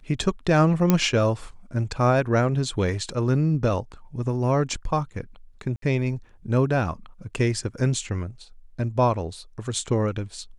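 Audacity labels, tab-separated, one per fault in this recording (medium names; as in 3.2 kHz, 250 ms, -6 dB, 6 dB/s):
0.900000	0.900000	pop -5 dBFS
5.760000	5.820000	dropout 63 ms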